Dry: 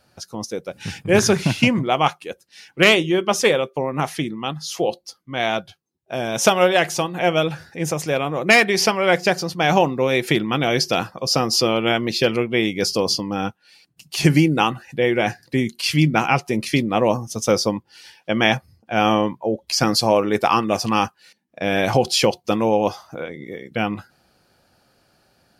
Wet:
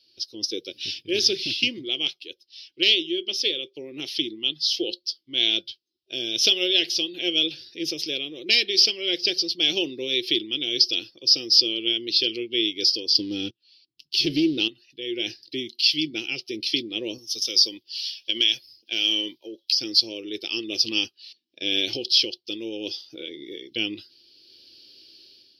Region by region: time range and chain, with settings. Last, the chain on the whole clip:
13.15–14.68 s: bass shelf 380 Hz +10.5 dB + waveshaping leveller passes 2
17.18–19.80 s: tilt EQ +3 dB/octave + compression 5:1, threshold -20 dBFS
whole clip: FFT filter 120 Hz 0 dB, 180 Hz -8 dB, 340 Hz +8 dB, 740 Hz -24 dB, 1.1 kHz -29 dB, 1.9 kHz -11 dB, 3.1 kHz +12 dB, 5.3 kHz +9 dB, 7.5 kHz -28 dB, 11 kHz -12 dB; level rider; tone controls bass -15 dB, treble +7 dB; trim -8 dB

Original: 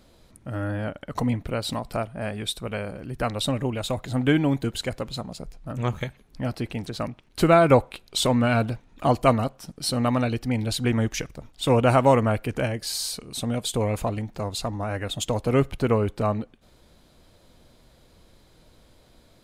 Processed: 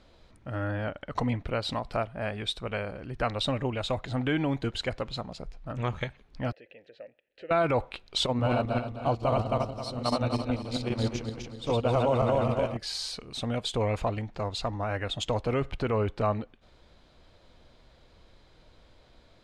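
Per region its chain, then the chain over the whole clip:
6.52–7.51 s: compression 1.5:1, threshold -34 dBFS + vowel filter e
8.26–12.77 s: backward echo that repeats 132 ms, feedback 69%, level -1.5 dB + gate -21 dBFS, range -8 dB + peaking EQ 1.8 kHz -11.5 dB 0.85 oct
whole clip: low-pass 4.4 kHz 12 dB/octave; peak limiter -14.5 dBFS; peaking EQ 200 Hz -5.5 dB 2.1 oct

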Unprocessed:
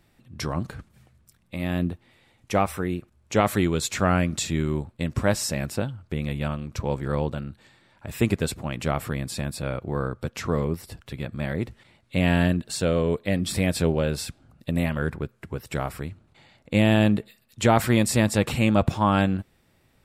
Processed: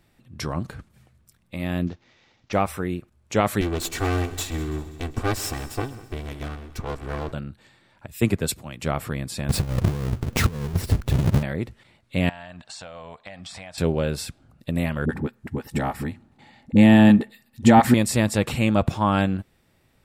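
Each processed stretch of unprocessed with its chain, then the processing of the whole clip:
1.87–2.53 s: CVSD coder 32 kbps + bass shelf 150 Hz -5.5 dB
3.61–7.32 s: comb filter that takes the minimum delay 2.6 ms + multi-head delay 66 ms, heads second and third, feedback 58%, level -19 dB
8.07–8.82 s: treble shelf 9.6 kHz +6.5 dB + three bands expanded up and down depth 100%
9.49–11.43 s: square wave that keeps the level + bass shelf 310 Hz +11.5 dB + compressor with a negative ratio -20 dBFS, ratio -0.5
12.29–13.78 s: low-pass 7.7 kHz 24 dB/octave + resonant low shelf 540 Hz -11 dB, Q 3 + compression 12:1, threshold -35 dBFS
15.05–17.94 s: small resonant body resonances 240/820/1800 Hz, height 11 dB, ringing for 35 ms + phase dispersion highs, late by 43 ms, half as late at 350 Hz
whole clip: none

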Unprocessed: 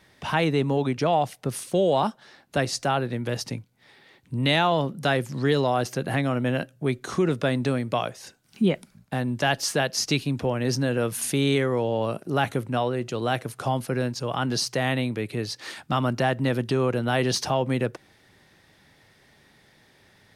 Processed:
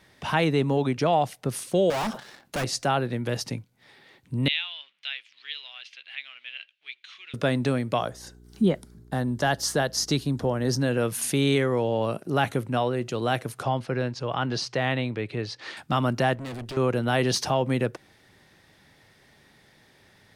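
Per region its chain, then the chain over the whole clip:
1.90–2.64 s: waveshaping leveller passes 2 + hard clipper -26 dBFS + decay stretcher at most 140 dB/s
4.48–7.34 s: companding laws mixed up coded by mu + Butterworth band-pass 2.9 kHz, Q 2
7.98–10.79 s: peaking EQ 2.5 kHz -11.5 dB 0.45 oct + mains buzz 60 Hz, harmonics 7, -51 dBFS -5 dB/octave
13.63–15.77 s: low-pass 4.4 kHz + peaking EQ 220 Hz -3.5 dB 1.1 oct
16.35–16.77 s: valve stage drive 33 dB, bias 0.45 + loudspeaker Doppler distortion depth 0.2 ms
whole clip: none

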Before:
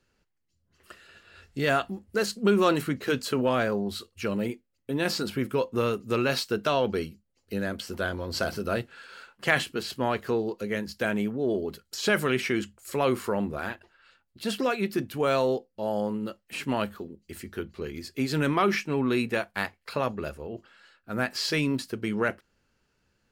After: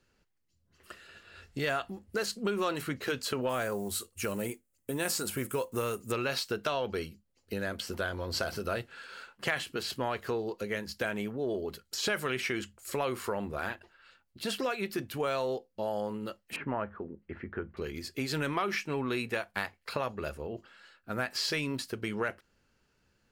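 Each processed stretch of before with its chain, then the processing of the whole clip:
3.49–6.12 s: block-companded coder 7-bit + resonant high shelf 6.1 kHz +10 dB, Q 1.5
16.56–17.77 s: low-pass 1.8 kHz 24 dB/octave + tape noise reduction on one side only encoder only
whole clip: dynamic bell 220 Hz, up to -7 dB, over -39 dBFS, Q 0.81; compression 3:1, threshold -29 dBFS

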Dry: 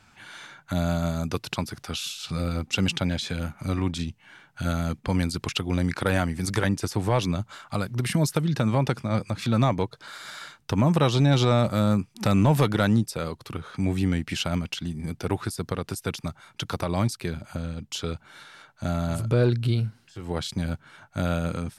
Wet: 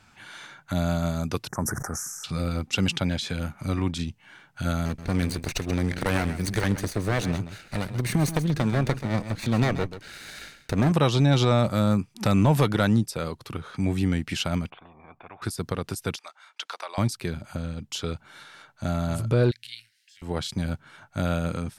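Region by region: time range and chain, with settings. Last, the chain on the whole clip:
1.48–2.24 s: Chebyshev band-stop 1.8–5.8 kHz, order 4 + peaking EQ 2.3 kHz +5.5 dB 0.36 oct + decay stretcher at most 34 dB/s
4.85–10.92 s: comb filter that takes the minimum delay 0.48 ms + delay 132 ms -12 dB
14.70–15.42 s: cascade formant filter a + spectrum-flattening compressor 4:1
16.16–16.98 s: Bessel high-pass 950 Hz, order 4 + distance through air 52 m
19.51–20.22 s: partial rectifier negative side -3 dB + elliptic high-pass 1.8 kHz
whole clip: none

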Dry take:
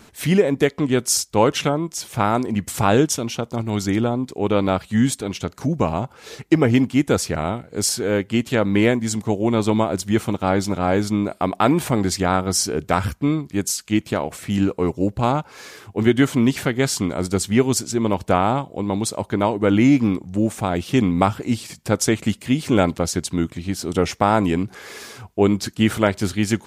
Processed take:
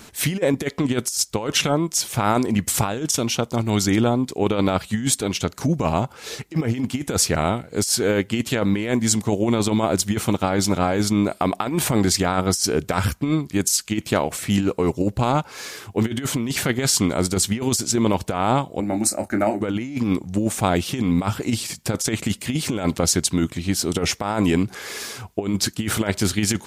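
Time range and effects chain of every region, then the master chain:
18.80–19.61 s: static phaser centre 670 Hz, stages 8 + doubling 28 ms -9 dB
whole clip: treble shelf 2.8 kHz +6 dB; compressor with a negative ratio -19 dBFS, ratio -0.5

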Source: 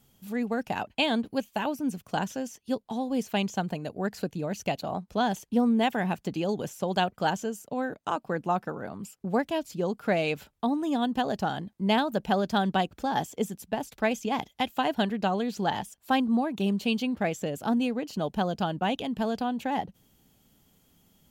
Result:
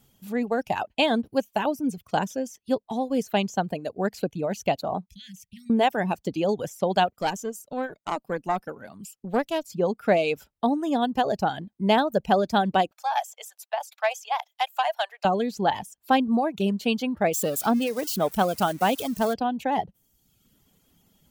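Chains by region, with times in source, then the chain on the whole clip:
5.06–5.70 s: Chebyshev band-stop 190–1900 Hz, order 5 + compression 5:1, threshold -42 dBFS
7.10–9.67 s: treble shelf 2.8 kHz +7.5 dB + valve stage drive 16 dB, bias 0.75
12.91–15.25 s: steep high-pass 640 Hz 48 dB/octave + transformer saturation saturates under 1.2 kHz
17.33–19.34 s: zero-crossing glitches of -25.5 dBFS + dynamic bell 1.3 kHz, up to +6 dB, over -46 dBFS, Q 2.2
whole clip: dynamic bell 580 Hz, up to +5 dB, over -39 dBFS, Q 1; reverb removal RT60 0.84 s; trim +2 dB

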